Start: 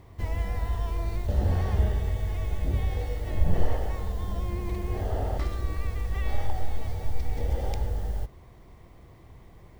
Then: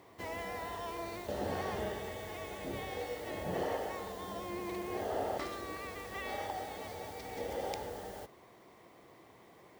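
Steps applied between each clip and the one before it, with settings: HPF 300 Hz 12 dB/oct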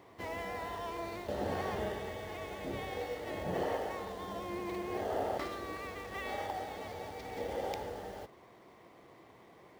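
median filter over 5 samples; gain +1 dB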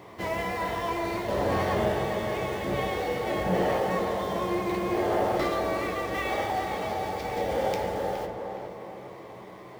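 soft clip -29 dBFS, distortion -19 dB; tape echo 0.417 s, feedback 54%, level -4 dB, low-pass 1600 Hz; on a send at -4 dB: reverb RT60 0.35 s, pre-delay 5 ms; on the sum: gain +9 dB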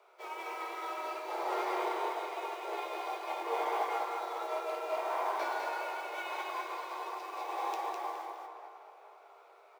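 on a send: echo 0.204 s -3 dB; on the sum: frequency shift +280 Hz; upward expander 1.5:1, over -37 dBFS; gain -8 dB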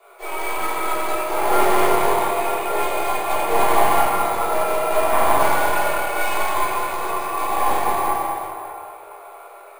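tracing distortion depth 0.27 ms; shoebox room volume 310 m³, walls mixed, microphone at 3.3 m; careless resampling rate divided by 4×, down filtered, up hold; gain +6 dB

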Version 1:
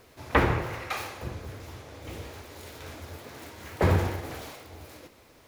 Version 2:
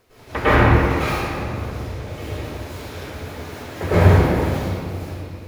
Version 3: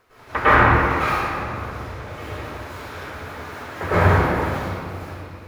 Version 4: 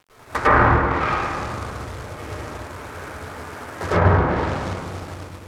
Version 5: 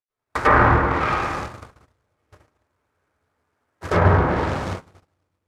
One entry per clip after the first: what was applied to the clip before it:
reverb RT60 2.1 s, pre-delay 97 ms, DRR -15 dB; gain -5.5 dB
bell 1300 Hz +11 dB 1.6 oct; gain -5 dB
Wiener smoothing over 9 samples; companded quantiser 4-bit; treble ducked by the level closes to 1700 Hz, closed at -13 dBFS
gate -26 dBFS, range -38 dB

